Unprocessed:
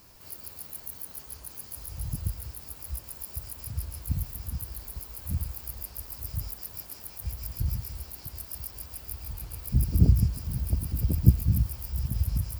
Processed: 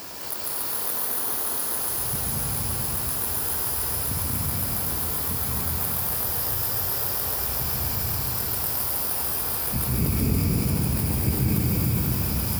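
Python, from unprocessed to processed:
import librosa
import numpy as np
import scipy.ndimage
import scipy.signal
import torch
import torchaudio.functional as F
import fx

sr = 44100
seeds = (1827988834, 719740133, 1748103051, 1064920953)

p1 = fx.sample_hold(x, sr, seeds[0], rate_hz=2400.0, jitter_pct=0)
p2 = x + (p1 * librosa.db_to_amplitude(-10.0))
p3 = fx.highpass(p2, sr, hz=130.0, slope=6)
p4 = fx.low_shelf(p3, sr, hz=190.0, db=-11.0)
p5 = p4 + 10.0 ** (-4.0 / 20.0) * np.pad(p4, (int(238 * sr / 1000.0), 0))[:len(p4)]
p6 = fx.rev_plate(p5, sr, seeds[1], rt60_s=3.7, hf_ratio=0.9, predelay_ms=120, drr_db=-5.5)
y = fx.env_flatten(p6, sr, amount_pct=50)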